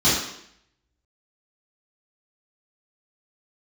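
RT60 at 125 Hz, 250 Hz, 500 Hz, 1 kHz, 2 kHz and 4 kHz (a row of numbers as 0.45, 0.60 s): 0.65, 0.75, 0.75, 0.70, 0.75, 0.70 s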